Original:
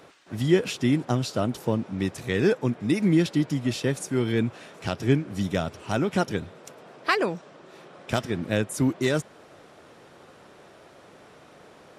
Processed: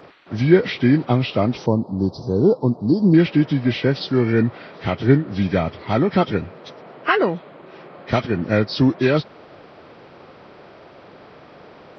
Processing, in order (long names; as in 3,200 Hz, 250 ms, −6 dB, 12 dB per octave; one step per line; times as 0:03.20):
hearing-aid frequency compression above 1,100 Hz 1.5 to 1
0:01.66–0:03.14: Chebyshev band-stop filter 1,000–4,500 Hz, order 3
level +7 dB